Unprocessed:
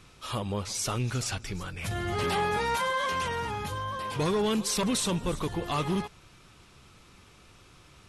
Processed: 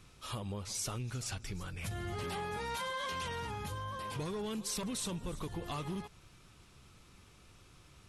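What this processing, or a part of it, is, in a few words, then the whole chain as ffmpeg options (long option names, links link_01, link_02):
ASMR close-microphone chain: -filter_complex "[0:a]lowshelf=frequency=210:gain=5,acompressor=threshold=-29dB:ratio=6,highshelf=frequency=6800:gain=5.5,asettb=1/sr,asplit=3[link_01][link_02][link_03];[link_01]atrim=end=2.704[link_04];[link_02]atrim=start=2.7:end=3.47,asetpts=PTS-STARTPTS,afade=type=in:duration=0.004:curve=qsin,afade=type=out:start_time=0.766:duration=0.004:curve=qsin,equalizer=frequency=3700:width=1.4:gain=4.5[link_05];[link_03]atrim=start=3.466[link_06];[link_04][link_05]acrossfade=duration=0.004:curve1=hsin:curve2=qsin[link_07];[link_07][link_06]acrossfade=duration=0.004:curve1=qsin:curve2=hsin,volume=-7dB"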